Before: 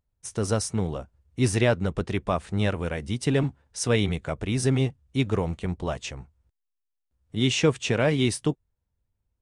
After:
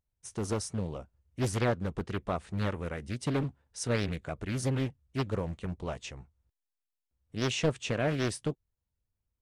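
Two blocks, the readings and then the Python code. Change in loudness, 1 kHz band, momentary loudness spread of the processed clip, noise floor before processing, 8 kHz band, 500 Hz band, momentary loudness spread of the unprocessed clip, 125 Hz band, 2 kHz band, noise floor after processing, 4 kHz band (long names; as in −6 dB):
−7.0 dB, −5.0 dB, 10 LU, −81 dBFS, −7.5 dB, −7.5 dB, 10 LU, −7.0 dB, −7.0 dB, below −85 dBFS, −8.5 dB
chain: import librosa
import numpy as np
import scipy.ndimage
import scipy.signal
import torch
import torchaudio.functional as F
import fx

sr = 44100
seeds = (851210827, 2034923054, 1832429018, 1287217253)

y = fx.doppler_dist(x, sr, depth_ms=0.69)
y = F.gain(torch.from_numpy(y), -7.0).numpy()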